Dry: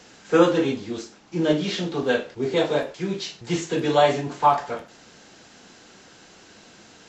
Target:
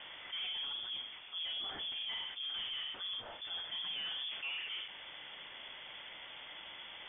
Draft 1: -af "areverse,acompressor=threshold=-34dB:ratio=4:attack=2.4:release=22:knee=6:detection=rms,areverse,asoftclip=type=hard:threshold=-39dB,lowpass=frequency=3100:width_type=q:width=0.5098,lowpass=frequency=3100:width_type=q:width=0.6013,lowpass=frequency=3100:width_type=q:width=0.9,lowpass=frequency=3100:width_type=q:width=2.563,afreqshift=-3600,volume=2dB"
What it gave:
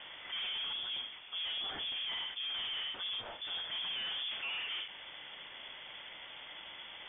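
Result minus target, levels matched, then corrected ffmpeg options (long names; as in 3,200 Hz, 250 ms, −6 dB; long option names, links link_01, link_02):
downward compressor: peak gain reduction −7 dB
-af "areverse,acompressor=threshold=-43dB:ratio=4:attack=2.4:release=22:knee=6:detection=rms,areverse,asoftclip=type=hard:threshold=-39dB,lowpass=frequency=3100:width_type=q:width=0.5098,lowpass=frequency=3100:width_type=q:width=0.6013,lowpass=frequency=3100:width_type=q:width=0.9,lowpass=frequency=3100:width_type=q:width=2.563,afreqshift=-3600,volume=2dB"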